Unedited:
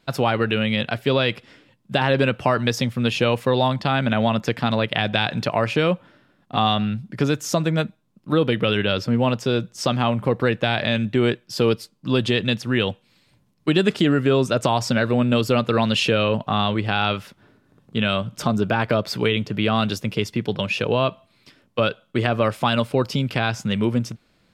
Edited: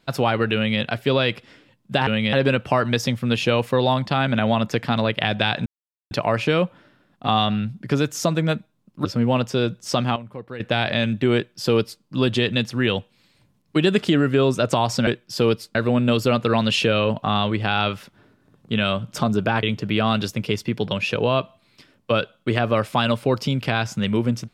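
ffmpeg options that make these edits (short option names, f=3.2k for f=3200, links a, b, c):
-filter_complex "[0:a]asplit=10[a][b][c][d][e][f][g][h][i][j];[a]atrim=end=2.072[k];[b]atrim=start=0.548:end=0.812[l];[c]atrim=start=2.068:end=5.4,asetpts=PTS-STARTPTS,afade=t=out:st=3.328:d=0.004:c=hsin,apad=pad_dur=0.45[m];[d]atrim=start=5.4:end=8.342,asetpts=PTS-STARTPTS,afade=t=in:d=0.004:c=hsin[n];[e]atrim=start=8.968:end=10.08,asetpts=PTS-STARTPTS,afade=t=out:st=0.912:d=0.2:c=log:silence=0.188365[o];[f]atrim=start=10.08:end=10.52,asetpts=PTS-STARTPTS,volume=-14.5dB[p];[g]atrim=start=10.52:end=14.992,asetpts=PTS-STARTPTS,afade=t=in:d=0.2:c=log:silence=0.188365[q];[h]atrim=start=11.268:end=11.952[r];[i]atrim=start=14.988:end=18.872[s];[j]atrim=start=19.308[t];[k][l]acrossfade=d=0.004:c1=hsin:c2=hsin[u];[m][n]concat=n=2:v=0:a=1[v];[u][v]acrossfade=d=0.004:c1=hsin:c2=hsin[w];[o][p][q]concat=n=3:v=0:a=1[x];[w][x]acrossfade=d=0.004:c1=hsin:c2=hsin[y];[y][r]acrossfade=d=0.004:c1=hsin:c2=hsin[z];[z][s]acrossfade=d=0.004:c1=hsin:c2=hsin[aa];[aa][t]acrossfade=d=0.004:c1=hsin:c2=hsin"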